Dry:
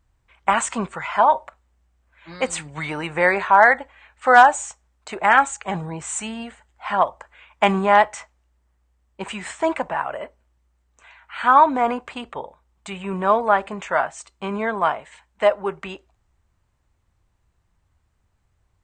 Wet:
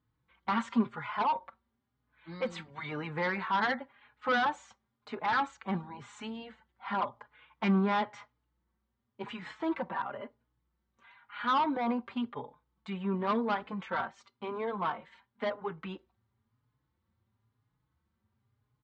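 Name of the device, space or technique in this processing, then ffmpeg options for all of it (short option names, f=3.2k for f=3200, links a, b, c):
barber-pole flanger into a guitar amplifier: -filter_complex "[0:a]asplit=2[a][b];[b]adelay=4.3,afreqshift=0.96[c];[a][c]amix=inputs=2:normalize=1,asoftclip=type=tanh:threshold=-17.5dB,highpass=110,equalizer=f=120:t=q:w=4:g=9,equalizer=f=230:t=q:w=4:g=9,equalizer=f=660:t=q:w=4:g=-9,equalizer=f=1.8k:t=q:w=4:g=-3,equalizer=f=2.6k:t=q:w=4:g=-7,lowpass=f=4.2k:w=0.5412,lowpass=f=4.2k:w=1.3066,volume=-4.5dB"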